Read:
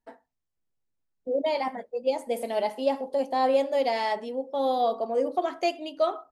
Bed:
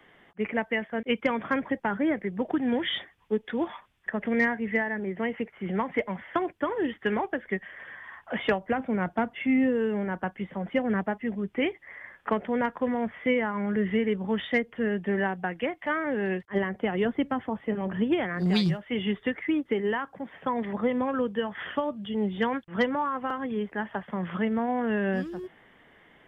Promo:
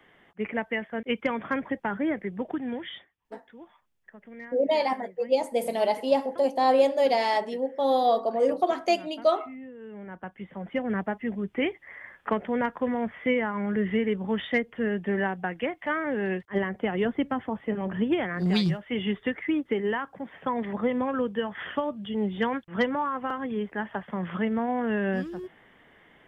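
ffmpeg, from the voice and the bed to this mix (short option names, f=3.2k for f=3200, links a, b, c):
-filter_complex "[0:a]adelay=3250,volume=2.5dB[a];[1:a]volume=17.5dB,afade=t=out:st=2.28:d=0.87:silence=0.133352,afade=t=in:st=9.77:d=1.46:silence=0.112202[b];[a][b]amix=inputs=2:normalize=0"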